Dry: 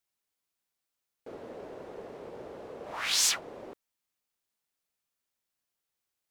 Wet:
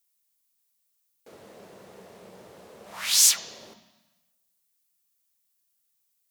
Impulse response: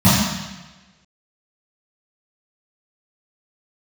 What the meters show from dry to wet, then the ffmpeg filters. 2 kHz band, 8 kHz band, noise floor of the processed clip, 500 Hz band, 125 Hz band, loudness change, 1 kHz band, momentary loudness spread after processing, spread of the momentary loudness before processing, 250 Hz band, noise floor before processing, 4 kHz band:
0.0 dB, +8.5 dB, −74 dBFS, −6.0 dB, can't be measured, +7.5 dB, −3.0 dB, 14 LU, 20 LU, −4.0 dB, below −85 dBFS, +5.0 dB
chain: -filter_complex "[0:a]lowshelf=frequency=210:gain=-5,crystalizer=i=5.5:c=0,asplit=2[link_01][link_02];[1:a]atrim=start_sample=2205,lowpass=3700[link_03];[link_02][link_03]afir=irnorm=-1:irlink=0,volume=-33dB[link_04];[link_01][link_04]amix=inputs=2:normalize=0,volume=-6.5dB"

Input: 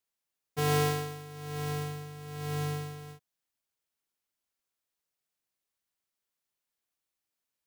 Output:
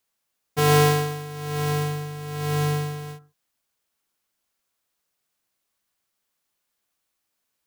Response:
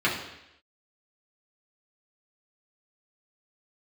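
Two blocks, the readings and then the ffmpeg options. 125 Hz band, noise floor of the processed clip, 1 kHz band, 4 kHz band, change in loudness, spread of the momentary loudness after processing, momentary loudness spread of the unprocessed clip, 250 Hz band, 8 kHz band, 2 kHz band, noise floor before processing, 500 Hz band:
+9.5 dB, −79 dBFS, +10.0 dB, +9.0 dB, +9.5 dB, 15 LU, 15 LU, +9.5 dB, +9.0 dB, +9.5 dB, below −85 dBFS, +10.0 dB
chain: -filter_complex "[0:a]asplit=2[link_01][link_02];[link_02]highshelf=frequency=1800:width_type=q:width=3:gain=-10.5[link_03];[1:a]atrim=start_sample=2205,atrim=end_sample=6615[link_04];[link_03][link_04]afir=irnorm=-1:irlink=0,volume=-24.5dB[link_05];[link_01][link_05]amix=inputs=2:normalize=0,volume=9dB"

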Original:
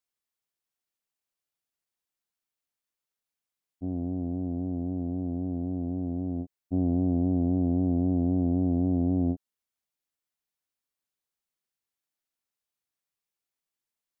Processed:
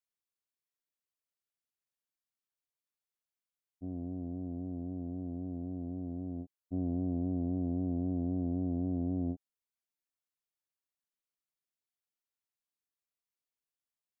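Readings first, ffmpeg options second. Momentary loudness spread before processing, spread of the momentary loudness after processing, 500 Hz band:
7 LU, 7 LU, −8.0 dB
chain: -af "bandreject=frequency=810:width=14,volume=-8dB"

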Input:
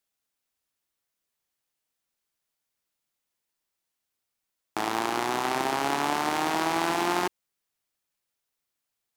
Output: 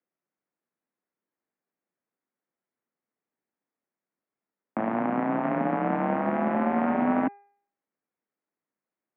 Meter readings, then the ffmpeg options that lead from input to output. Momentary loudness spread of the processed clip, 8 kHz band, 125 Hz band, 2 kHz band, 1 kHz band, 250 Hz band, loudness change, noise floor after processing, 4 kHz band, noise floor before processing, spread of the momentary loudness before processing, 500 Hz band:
6 LU, below −40 dB, +6.5 dB, −5.0 dB, −1.5 dB, +6.5 dB, +0.5 dB, below −85 dBFS, below −20 dB, −84 dBFS, 5 LU, +2.5 dB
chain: -af "equalizer=frequency=310:width_type=o:width=2.3:gain=12,highpass=frequency=300:width_type=q:width=0.5412,highpass=frequency=300:width_type=q:width=1.307,lowpass=frequency=2300:width_type=q:width=0.5176,lowpass=frequency=2300:width_type=q:width=0.7071,lowpass=frequency=2300:width_type=q:width=1.932,afreqshift=-100,bandreject=frequency=403.9:width_type=h:width=4,bandreject=frequency=807.8:width_type=h:width=4,bandreject=frequency=1211.7:width_type=h:width=4,bandreject=frequency=1615.6:width_type=h:width=4,bandreject=frequency=2019.5:width_type=h:width=4,bandreject=frequency=2423.4:width_type=h:width=4,volume=-4.5dB"

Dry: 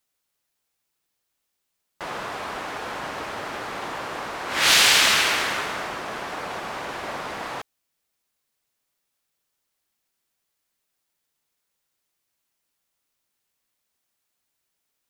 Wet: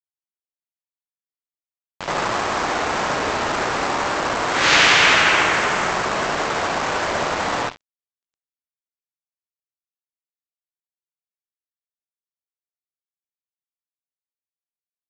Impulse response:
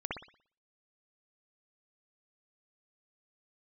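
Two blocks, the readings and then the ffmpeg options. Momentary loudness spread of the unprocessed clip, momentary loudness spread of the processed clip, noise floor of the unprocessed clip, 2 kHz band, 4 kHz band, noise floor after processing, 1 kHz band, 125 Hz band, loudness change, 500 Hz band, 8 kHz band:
17 LU, 11 LU, −79 dBFS, +6.0 dB, +1.0 dB, below −85 dBFS, +8.5 dB, +10.0 dB, +4.5 dB, +9.5 dB, −1.5 dB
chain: -filter_complex "[0:a]highshelf=frequency=4300:gain=-4[link_01];[1:a]atrim=start_sample=2205,asetrate=37044,aresample=44100[link_02];[link_01][link_02]afir=irnorm=-1:irlink=0,asplit=2[link_03][link_04];[link_04]acompressor=threshold=-26dB:ratio=6,volume=0dB[link_05];[link_03][link_05]amix=inputs=2:normalize=0,asplit=2[link_06][link_07];[link_07]adelay=695,lowpass=frequency=1600:poles=1,volume=-22dB,asplit=2[link_08][link_09];[link_09]adelay=695,lowpass=frequency=1600:poles=1,volume=0.4,asplit=2[link_10][link_11];[link_11]adelay=695,lowpass=frequency=1600:poles=1,volume=0.4[link_12];[link_06][link_08][link_10][link_12]amix=inputs=4:normalize=0,acompressor=mode=upward:threshold=-29dB:ratio=2.5,aresample=16000,acrusher=bits=3:mix=0:aa=0.5,aresample=44100"

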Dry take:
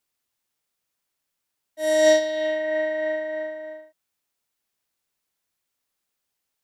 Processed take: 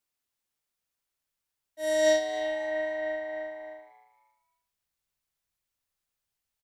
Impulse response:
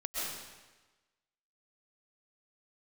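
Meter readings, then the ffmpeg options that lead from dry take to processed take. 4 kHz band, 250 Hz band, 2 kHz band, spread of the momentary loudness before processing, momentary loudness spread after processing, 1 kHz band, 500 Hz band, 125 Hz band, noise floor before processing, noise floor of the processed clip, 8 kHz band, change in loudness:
−5.5 dB, −7.5 dB, −5.5 dB, 15 LU, 15 LU, −1.0 dB, −6.0 dB, can't be measured, −81 dBFS, below −85 dBFS, −5.5 dB, −6.0 dB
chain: -filter_complex "[0:a]asubboost=boost=4:cutoff=120,asplit=4[link_01][link_02][link_03][link_04];[link_02]adelay=269,afreqshift=120,volume=-18dB[link_05];[link_03]adelay=538,afreqshift=240,volume=-27.1dB[link_06];[link_04]adelay=807,afreqshift=360,volume=-36.2dB[link_07];[link_01][link_05][link_06][link_07]amix=inputs=4:normalize=0,volume=-5.5dB"

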